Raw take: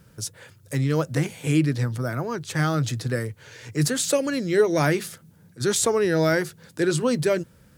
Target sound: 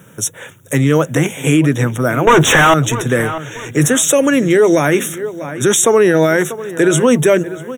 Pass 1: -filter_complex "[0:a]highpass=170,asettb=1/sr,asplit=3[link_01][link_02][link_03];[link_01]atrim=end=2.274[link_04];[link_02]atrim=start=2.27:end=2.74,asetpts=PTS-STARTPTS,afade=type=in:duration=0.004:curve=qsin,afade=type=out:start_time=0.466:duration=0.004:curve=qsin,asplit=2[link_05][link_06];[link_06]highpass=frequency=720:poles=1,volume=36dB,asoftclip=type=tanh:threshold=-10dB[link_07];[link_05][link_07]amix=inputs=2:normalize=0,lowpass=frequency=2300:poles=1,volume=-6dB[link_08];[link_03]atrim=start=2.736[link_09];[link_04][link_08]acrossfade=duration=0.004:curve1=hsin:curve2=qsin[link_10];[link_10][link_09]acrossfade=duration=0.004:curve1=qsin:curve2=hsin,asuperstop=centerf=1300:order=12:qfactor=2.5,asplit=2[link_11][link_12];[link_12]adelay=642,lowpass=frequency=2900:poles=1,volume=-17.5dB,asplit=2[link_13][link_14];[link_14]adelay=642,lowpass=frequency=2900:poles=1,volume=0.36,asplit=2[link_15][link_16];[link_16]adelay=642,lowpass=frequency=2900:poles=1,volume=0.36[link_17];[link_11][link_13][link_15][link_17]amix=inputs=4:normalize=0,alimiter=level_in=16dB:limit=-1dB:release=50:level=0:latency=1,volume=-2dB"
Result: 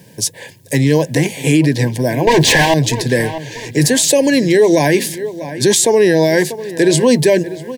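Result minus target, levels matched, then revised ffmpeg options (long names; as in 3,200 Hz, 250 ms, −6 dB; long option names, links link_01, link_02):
4,000 Hz band +3.5 dB
-filter_complex "[0:a]highpass=170,asettb=1/sr,asplit=3[link_01][link_02][link_03];[link_01]atrim=end=2.274[link_04];[link_02]atrim=start=2.27:end=2.74,asetpts=PTS-STARTPTS,afade=type=in:duration=0.004:curve=qsin,afade=type=out:start_time=0.466:duration=0.004:curve=qsin,asplit=2[link_05][link_06];[link_06]highpass=frequency=720:poles=1,volume=36dB,asoftclip=type=tanh:threshold=-10dB[link_07];[link_05][link_07]amix=inputs=2:normalize=0,lowpass=frequency=2300:poles=1,volume=-6dB[link_08];[link_03]atrim=start=2.736[link_09];[link_04][link_08]acrossfade=duration=0.004:curve1=hsin:curve2=qsin[link_10];[link_10][link_09]acrossfade=duration=0.004:curve1=qsin:curve2=hsin,asuperstop=centerf=4600:order=12:qfactor=2.5,asplit=2[link_11][link_12];[link_12]adelay=642,lowpass=frequency=2900:poles=1,volume=-17.5dB,asplit=2[link_13][link_14];[link_14]adelay=642,lowpass=frequency=2900:poles=1,volume=0.36,asplit=2[link_15][link_16];[link_16]adelay=642,lowpass=frequency=2900:poles=1,volume=0.36[link_17];[link_11][link_13][link_15][link_17]amix=inputs=4:normalize=0,alimiter=level_in=16dB:limit=-1dB:release=50:level=0:latency=1,volume=-2dB"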